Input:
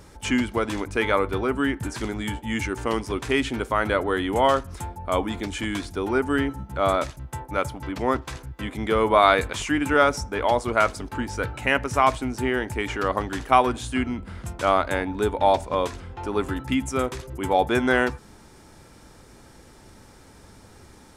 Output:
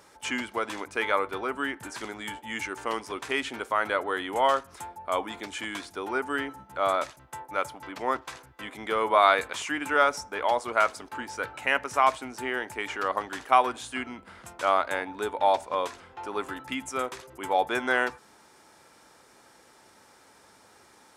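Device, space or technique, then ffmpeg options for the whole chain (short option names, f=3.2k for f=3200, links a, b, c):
filter by subtraction: -filter_complex "[0:a]asplit=2[a][b];[b]lowpass=930,volume=-1[c];[a][c]amix=inputs=2:normalize=0,volume=-4dB"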